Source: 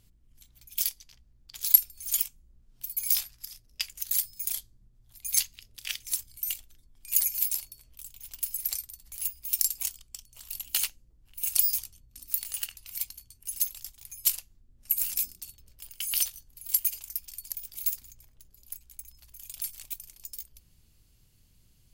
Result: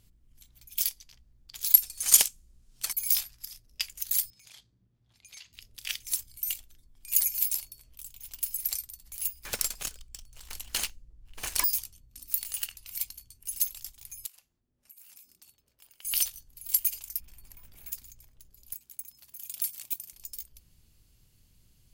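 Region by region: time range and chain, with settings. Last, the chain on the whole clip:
1.83–2.93 median filter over 3 samples + bell 9600 Hz +15 dB 2.5 oct
4.3–5.53 compressor, threshold -32 dBFS + BPF 100–4000 Hz + core saturation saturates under 2400 Hz
9.44–11.64 median filter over 3 samples + low shelf 86 Hz +9.5 dB
14.26–16.05 high shelf 2200 Hz -11 dB + compressor 16:1, threshold -48 dBFS + HPF 540 Hz 6 dB/oct
17.2–17.92 G.711 law mismatch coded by mu + EQ curve 170 Hz 0 dB, 2500 Hz -8 dB, 4600 Hz -18 dB
18.73–20.13 HPF 150 Hz + high shelf 12000 Hz +6.5 dB
whole clip: dry

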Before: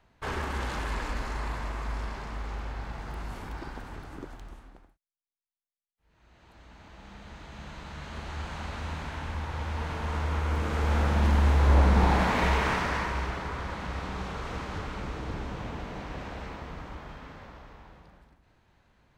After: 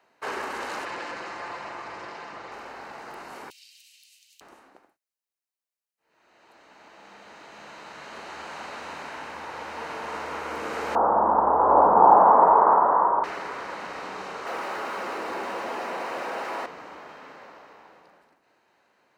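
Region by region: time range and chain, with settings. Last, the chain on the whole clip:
0.85–2.52 minimum comb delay 5.8 ms + LPF 5900 Hz
3.5–4.41 steep high-pass 2700 Hz 48 dB/oct + tilt +1.5 dB/oct
10.95–13.24 steep low-pass 1200 Hz + bell 900 Hz +12.5 dB 1.7 oct
14.46–16.66 overdrive pedal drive 41 dB, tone 1100 Hz, clips at -24 dBFS + notch comb 150 Hz
whole clip: Chebyshev high-pass 420 Hz, order 2; notch 3400 Hz, Q 8.5; gain +3.5 dB

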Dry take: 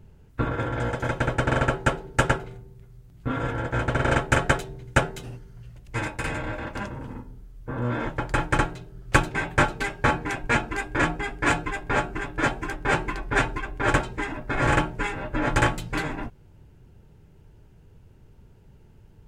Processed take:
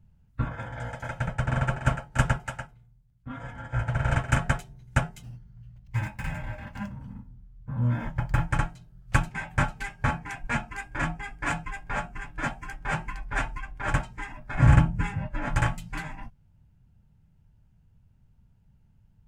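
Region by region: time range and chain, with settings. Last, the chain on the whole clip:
1.28–4.37 echo 0.291 s -6 dB + three-band expander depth 40%
5.22–8.47 median filter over 5 samples + bell 100 Hz +5 dB 2.9 oct
14.58–15.27 HPF 42 Hz 24 dB/oct + low shelf 280 Hz +11.5 dB
whole clip: dynamic EQ 3900 Hz, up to -6 dB, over -50 dBFS, Q 2.7; spectral noise reduction 8 dB; EQ curve 210 Hz 0 dB, 390 Hz -18 dB, 680 Hz -6 dB

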